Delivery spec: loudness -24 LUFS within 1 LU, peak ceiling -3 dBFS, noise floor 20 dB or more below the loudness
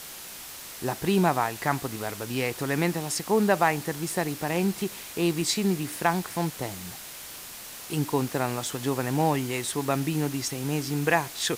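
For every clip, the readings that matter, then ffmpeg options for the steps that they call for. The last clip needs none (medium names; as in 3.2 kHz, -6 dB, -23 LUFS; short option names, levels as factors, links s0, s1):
noise floor -42 dBFS; noise floor target -47 dBFS; loudness -27.0 LUFS; peak level -9.0 dBFS; loudness target -24.0 LUFS
-> -af "afftdn=nr=6:nf=-42"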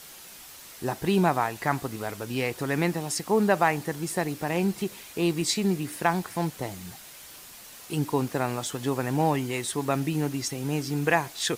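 noise floor -46 dBFS; noise floor target -48 dBFS
-> -af "afftdn=nr=6:nf=-46"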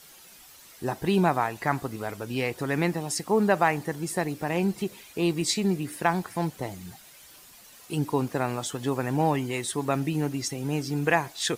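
noise floor -51 dBFS; loudness -27.5 LUFS; peak level -9.0 dBFS; loudness target -24.0 LUFS
-> -af "volume=1.5"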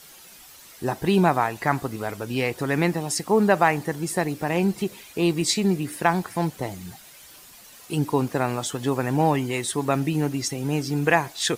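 loudness -24.0 LUFS; peak level -5.5 dBFS; noise floor -48 dBFS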